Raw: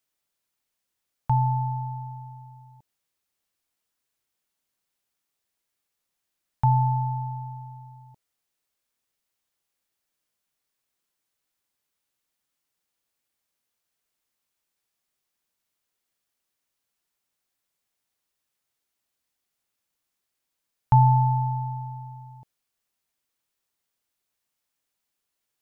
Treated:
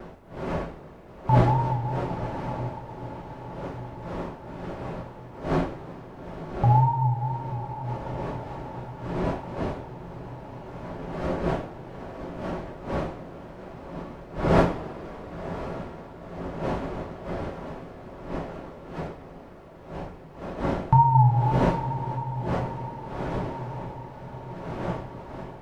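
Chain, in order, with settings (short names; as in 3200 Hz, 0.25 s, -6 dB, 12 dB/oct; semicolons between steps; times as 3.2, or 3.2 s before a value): wind noise 580 Hz -35 dBFS; wow and flutter 110 cents; on a send: diffused feedback echo 1.032 s, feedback 61%, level -13 dB; on the sum: two-slope reverb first 0.37 s, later 3.8 s, from -20 dB, DRR 1.5 dB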